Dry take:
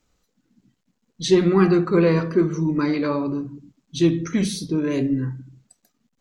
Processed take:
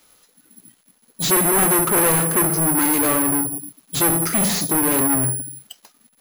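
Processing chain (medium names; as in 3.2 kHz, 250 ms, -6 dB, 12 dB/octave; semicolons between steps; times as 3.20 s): careless resampling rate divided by 4×, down none, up zero stuff; overdrive pedal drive 21 dB, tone 3.9 kHz, clips at -5 dBFS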